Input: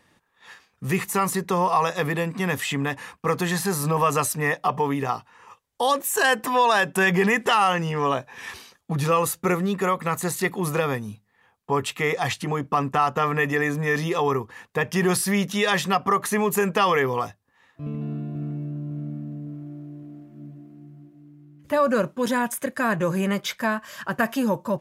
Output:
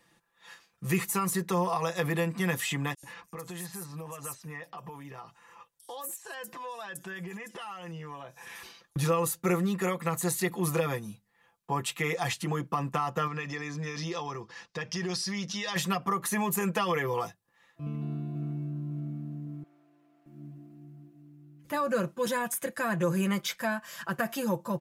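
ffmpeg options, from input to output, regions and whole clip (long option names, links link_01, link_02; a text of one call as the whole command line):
ffmpeg -i in.wav -filter_complex "[0:a]asettb=1/sr,asplit=3[link_01][link_02][link_03];[link_01]atrim=end=2.944[link_04];[link_02]atrim=start=2.94:end=8.96,asetpts=PTS-STARTPTS,afade=type=in:duration=0.004:curve=qsin,afade=type=out:start_time=6.016:duration=0.004:curve=qsin,acompressor=threshold=-36dB:ratio=4:attack=3.2:release=140:knee=1:detection=peak,acrossover=split=5600[link_05][link_06];[link_05]adelay=90[link_07];[link_07][link_06]amix=inputs=2:normalize=0,atrim=end_sample=265482[link_08];[link_03]atrim=start=8.956[link_09];[link_04][link_08]acrossfade=duration=0.004:curve1=hsin:curve2=qsin[link_10];[link_10][link_09]acrossfade=duration=0.004:curve1=qsin:curve2=hsin,asettb=1/sr,asplit=3[link_11][link_12][link_13];[link_11]atrim=end=13.274[link_14];[link_12]atrim=start=13.27:end=15.76,asetpts=PTS-STARTPTS,afade=type=in:duration=0.004:curve=qsin,afade=type=out:start_time=2.486:duration=0.004:curve=qsin,lowpass=frequency=5200:width_type=q:width=3.4,acompressor=threshold=-32dB:ratio=2:attack=3.2:release=140:knee=1:detection=peak[link_15];[link_13]atrim=start=15.756[link_16];[link_14][link_15]acrossfade=duration=0.004:curve1=hsin:curve2=qsin[link_17];[link_17][link_16]acrossfade=duration=0.004:curve1=qsin:curve2=hsin,asettb=1/sr,asplit=3[link_18][link_19][link_20];[link_18]atrim=end=19.634[link_21];[link_19]atrim=start=19.63:end=20.26,asetpts=PTS-STARTPTS,afade=type=in:duration=0.004:curve=qsin,afade=type=out:start_time=0.626:duration=0.004:curve=qsin,highpass=810,highshelf=frequency=5700:gain=-11[link_22];[link_20]atrim=start=20.256[link_23];[link_21][link_22]acrossfade=duration=0.004:curve1=hsin:curve2=qsin[link_24];[link_24][link_23]acrossfade=duration=0.004:curve1=qsin:curve2=hsin,highshelf=frequency=4900:gain=6,aecho=1:1:5.9:0.65,acrossover=split=450[link_25][link_26];[link_26]acompressor=threshold=-20dB:ratio=6[link_27];[link_25][link_27]amix=inputs=2:normalize=0,volume=-7dB" out.wav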